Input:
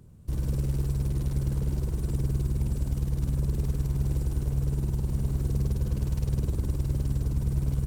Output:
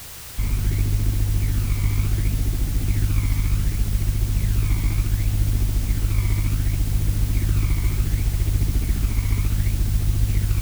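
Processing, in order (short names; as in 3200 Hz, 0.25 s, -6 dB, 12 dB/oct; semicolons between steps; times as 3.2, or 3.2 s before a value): tilt shelf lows +3.5 dB, about 1200 Hz; in parallel at -6.5 dB: decimation with a swept rate 17×, swing 160% 0.91 Hz; on the sum: bell 3000 Hz +14.5 dB 0.38 oct; speed mistake 45 rpm record played at 33 rpm; added noise white -38 dBFS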